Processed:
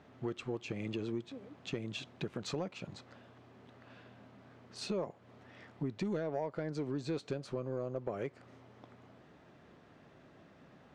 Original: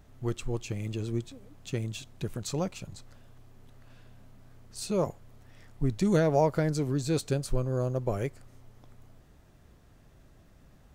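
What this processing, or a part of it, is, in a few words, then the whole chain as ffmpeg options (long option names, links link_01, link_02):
AM radio: -af "highpass=200,lowpass=3300,acompressor=threshold=-38dB:ratio=5,asoftclip=type=tanh:threshold=-29dB,volume=4.5dB"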